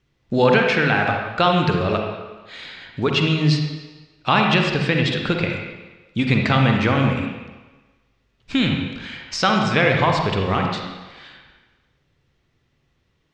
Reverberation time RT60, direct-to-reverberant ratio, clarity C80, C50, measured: 1.3 s, 1.5 dB, 4.0 dB, 2.0 dB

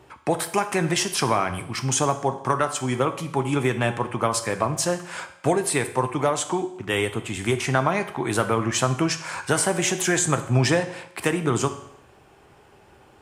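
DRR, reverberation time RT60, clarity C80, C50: 8.0 dB, 0.70 s, 14.5 dB, 12.0 dB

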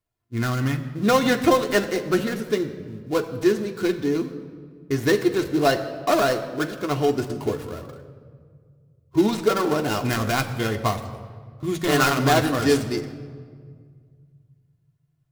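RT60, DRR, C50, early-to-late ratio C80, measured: 1.9 s, 3.0 dB, 11.5 dB, 12.5 dB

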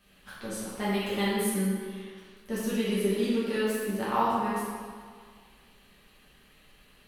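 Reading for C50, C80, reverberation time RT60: −2.0 dB, 0.5 dB, 1.9 s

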